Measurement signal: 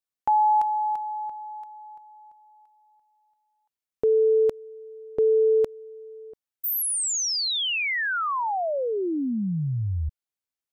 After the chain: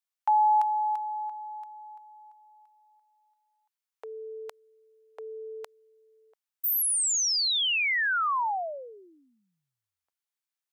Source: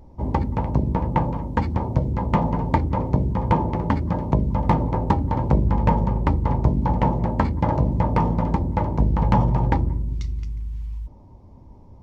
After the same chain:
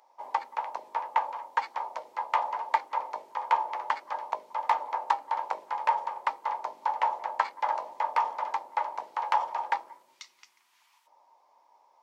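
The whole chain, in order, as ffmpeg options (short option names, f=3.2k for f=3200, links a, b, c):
-af "highpass=f=790:w=0.5412,highpass=f=790:w=1.3066"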